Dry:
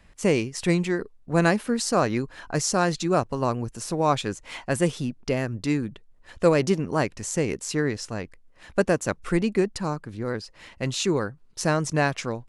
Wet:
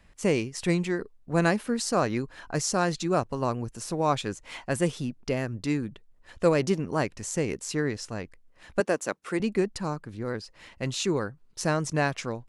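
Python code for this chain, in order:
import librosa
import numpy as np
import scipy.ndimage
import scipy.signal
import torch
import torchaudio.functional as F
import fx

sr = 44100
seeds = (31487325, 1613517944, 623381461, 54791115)

y = fx.highpass(x, sr, hz=270.0, slope=12, at=(8.8, 9.4))
y = y * 10.0 ** (-3.0 / 20.0)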